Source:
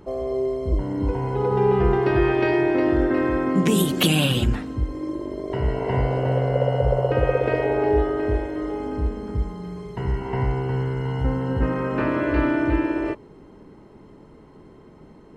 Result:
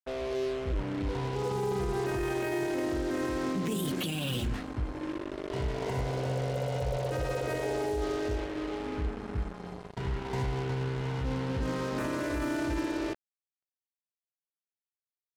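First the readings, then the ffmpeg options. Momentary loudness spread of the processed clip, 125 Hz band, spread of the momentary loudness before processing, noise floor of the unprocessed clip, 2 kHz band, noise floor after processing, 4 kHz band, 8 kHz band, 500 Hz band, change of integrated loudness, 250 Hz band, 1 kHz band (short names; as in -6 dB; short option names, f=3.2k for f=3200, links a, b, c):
5 LU, -10.0 dB, 9 LU, -48 dBFS, -9.0 dB, under -85 dBFS, -10.0 dB, -7.5 dB, -10.5 dB, -10.0 dB, -10.0 dB, -9.5 dB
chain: -af "acrusher=bits=4:mix=0:aa=0.5,alimiter=limit=-16.5dB:level=0:latency=1:release=14,volume=-7.5dB"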